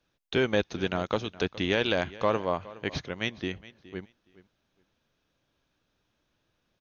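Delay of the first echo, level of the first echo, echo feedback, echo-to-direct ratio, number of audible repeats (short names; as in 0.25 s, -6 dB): 0.417 s, -19.0 dB, 18%, -19.0 dB, 2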